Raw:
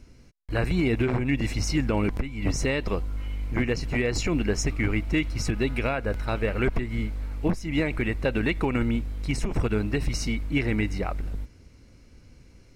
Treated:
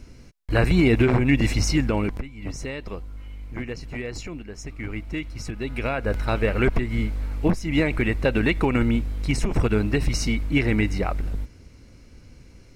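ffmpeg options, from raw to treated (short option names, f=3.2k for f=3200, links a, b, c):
-af "volume=24dB,afade=t=out:st=1.5:d=0.84:silence=0.237137,afade=t=out:st=4.14:d=0.33:silence=0.421697,afade=t=in:st=4.47:d=0.52:silence=0.375837,afade=t=in:st=5.6:d=0.57:silence=0.334965"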